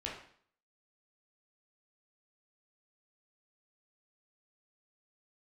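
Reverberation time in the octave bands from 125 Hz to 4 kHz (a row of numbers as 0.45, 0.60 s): 0.55, 0.55, 0.55, 0.55, 0.55, 0.50 s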